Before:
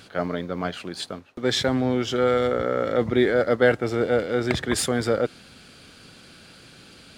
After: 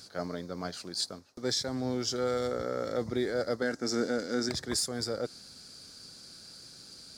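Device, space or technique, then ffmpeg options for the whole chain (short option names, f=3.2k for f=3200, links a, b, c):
over-bright horn tweeter: -filter_complex "[0:a]asettb=1/sr,asplit=3[a][b][c];[a]atrim=end=3.624[d];[b]atrim=start=3.62:end=4.49,asetpts=PTS-STARTPTS,afade=t=in:d=0.004:c=qsin,afade=t=out:st=0.866:d=0.004:c=qsin,equalizer=f=100:t=o:w=0.67:g=-9,equalizer=f=250:t=o:w=0.67:g=10,equalizer=f=1.6k:t=o:w=0.67:g=7,equalizer=f=6.3k:t=o:w=0.67:g=9[e];[c]atrim=start=4.486[f];[d][e]acrossfade=d=0.004:c1=hsin:c2=qsin[g];[g][f]acrossfade=d=0.004:c1=qsin:c2=hsin,highshelf=f=3.8k:t=q:w=3:g=9,alimiter=limit=-10.5dB:level=0:latency=1:release=297,volume=-9dB"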